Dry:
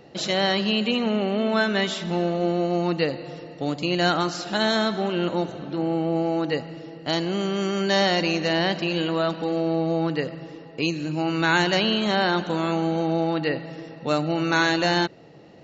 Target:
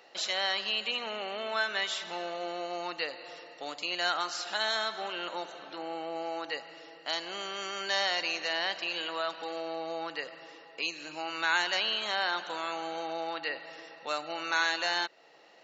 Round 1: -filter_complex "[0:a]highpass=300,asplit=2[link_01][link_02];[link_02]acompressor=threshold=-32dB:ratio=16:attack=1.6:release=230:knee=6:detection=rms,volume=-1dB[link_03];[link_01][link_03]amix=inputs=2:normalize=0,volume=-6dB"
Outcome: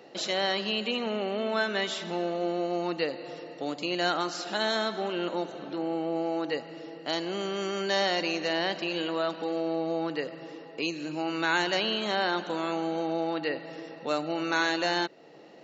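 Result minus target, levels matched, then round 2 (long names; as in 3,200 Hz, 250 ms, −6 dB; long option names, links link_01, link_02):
250 Hz band +11.0 dB
-filter_complex "[0:a]highpass=870,asplit=2[link_01][link_02];[link_02]acompressor=threshold=-32dB:ratio=16:attack=1.6:release=230:knee=6:detection=rms,volume=-1dB[link_03];[link_01][link_03]amix=inputs=2:normalize=0,volume=-6dB"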